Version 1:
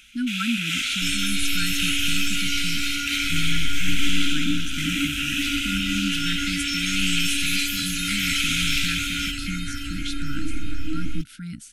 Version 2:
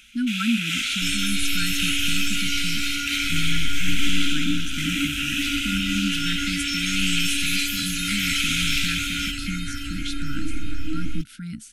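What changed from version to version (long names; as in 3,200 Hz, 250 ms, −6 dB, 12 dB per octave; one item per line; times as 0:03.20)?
speech: add parametric band 220 Hz +5 dB 0.23 octaves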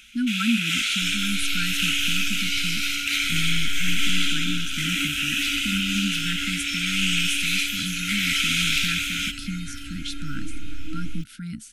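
second sound −7.0 dB
reverb: on, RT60 0.45 s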